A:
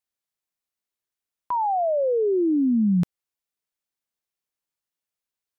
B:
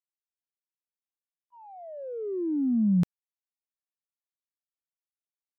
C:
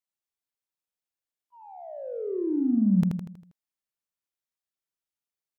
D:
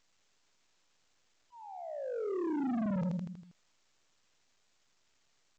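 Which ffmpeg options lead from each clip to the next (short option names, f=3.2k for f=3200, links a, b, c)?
-af "agate=range=-57dB:threshold=-20dB:ratio=16:detection=peak"
-af "aecho=1:1:80|160|240|320|400|480:0.631|0.309|0.151|0.0742|0.0364|0.0178"
-af "asoftclip=type=tanh:threshold=-30dB,volume=-1dB" -ar 16000 -c:a pcm_alaw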